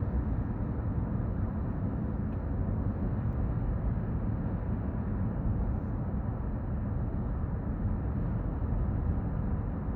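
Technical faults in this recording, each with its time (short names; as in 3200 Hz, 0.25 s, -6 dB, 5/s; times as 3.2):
3.33 gap 3.4 ms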